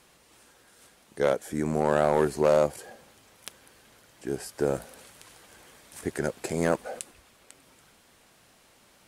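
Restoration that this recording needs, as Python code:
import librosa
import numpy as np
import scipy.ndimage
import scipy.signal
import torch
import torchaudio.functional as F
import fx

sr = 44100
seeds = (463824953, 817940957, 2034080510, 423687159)

y = fx.fix_declip(x, sr, threshold_db=-13.5)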